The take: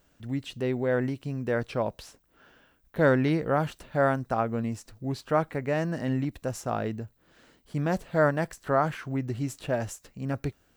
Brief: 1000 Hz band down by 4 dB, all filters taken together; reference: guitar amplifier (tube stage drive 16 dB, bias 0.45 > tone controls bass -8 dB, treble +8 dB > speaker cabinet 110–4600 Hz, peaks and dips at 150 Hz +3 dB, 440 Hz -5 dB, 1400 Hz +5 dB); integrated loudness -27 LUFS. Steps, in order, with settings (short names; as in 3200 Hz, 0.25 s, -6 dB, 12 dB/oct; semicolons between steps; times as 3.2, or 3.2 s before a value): bell 1000 Hz -8.5 dB; tube stage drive 16 dB, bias 0.45; tone controls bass -8 dB, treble +8 dB; speaker cabinet 110–4600 Hz, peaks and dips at 150 Hz +3 dB, 440 Hz -5 dB, 1400 Hz +5 dB; gain +7.5 dB